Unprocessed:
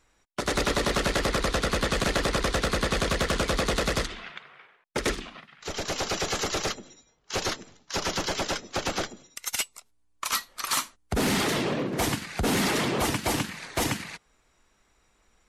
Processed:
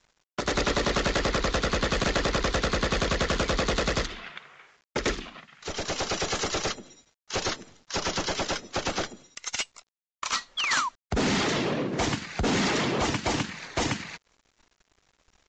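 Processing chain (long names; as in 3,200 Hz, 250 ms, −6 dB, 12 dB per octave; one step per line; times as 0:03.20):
bit reduction 10 bits
downsampling to 16,000 Hz
sound drawn into the spectrogram fall, 0:10.57–0:10.89, 930–3,500 Hz −28 dBFS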